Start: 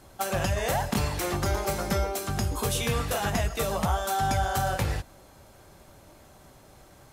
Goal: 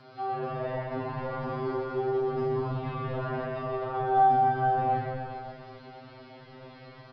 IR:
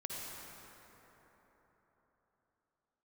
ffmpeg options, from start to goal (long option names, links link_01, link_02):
-filter_complex "[0:a]highpass=110,acrossover=split=270|1500[link_01][link_02][link_03];[link_03]acompressor=threshold=-51dB:ratio=6[link_04];[link_01][link_02][link_04]amix=inputs=3:normalize=0,alimiter=limit=-21.5dB:level=0:latency=1:release=165,asplit=2[link_05][link_06];[link_06]acompressor=mode=upward:threshold=-33dB:ratio=2.5,volume=-1.5dB[link_07];[link_05][link_07]amix=inputs=2:normalize=0,asplit=2[link_08][link_09];[link_09]adelay=36,volume=-5dB[link_10];[link_08][link_10]amix=inputs=2:normalize=0,asplit=9[link_11][link_12][link_13][link_14][link_15][link_16][link_17][link_18][link_19];[link_12]adelay=131,afreqshift=-43,volume=-11.5dB[link_20];[link_13]adelay=262,afreqshift=-86,volume=-15.2dB[link_21];[link_14]adelay=393,afreqshift=-129,volume=-19dB[link_22];[link_15]adelay=524,afreqshift=-172,volume=-22.7dB[link_23];[link_16]adelay=655,afreqshift=-215,volume=-26.5dB[link_24];[link_17]adelay=786,afreqshift=-258,volume=-30.2dB[link_25];[link_18]adelay=917,afreqshift=-301,volume=-34dB[link_26];[link_19]adelay=1048,afreqshift=-344,volume=-37.7dB[link_27];[link_11][link_20][link_21][link_22][link_23][link_24][link_25][link_26][link_27]amix=inputs=9:normalize=0[link_28];[1:a]atrim=start_sample=2205,asetrate=83790,aresample=44100[link_29];[link_28][link_29]afir=irnorm=-1:irlink=0,aresample=11025,aresample=44100,afftfilt=real='re*2.45*eq(mod(b,6),0)':imag='im*2.45*eq(mod(b,6),0)':win_size=2048:overlap=0.75"